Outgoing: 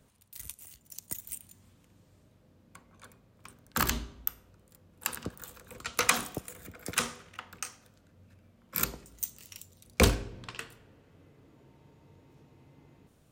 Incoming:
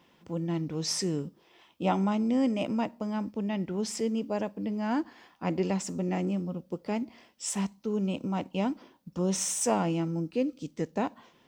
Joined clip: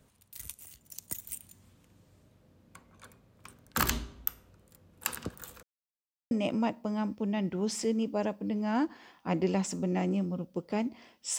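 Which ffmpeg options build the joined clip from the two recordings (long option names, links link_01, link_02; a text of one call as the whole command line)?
ffmpeg -i cue0.wav -i cue1.wav -filter_complex "[0:a]apad=whole_dur=11.38,atrim=end=11.38,asplit=2[link_01][link_02];[link_01]atrim=end=5.63,asetpts=PTS-STARTPTS,afade=type=out:start_time=5.626:duration=0.004:curve=hsin[link_03];[link_02]atrim=start=5.63:end=6.31,asetpts=PTS-STARTPTS,volume=0[link_04];[1:a]atrim=start=2.47:end=7.54,asetpts=PTS-STARTPTS,afade=type=in:duration=0.004:curve=hsin[link_05];[link_03][link_04][link_05]concat=n=3:v=0:a=1" out.wav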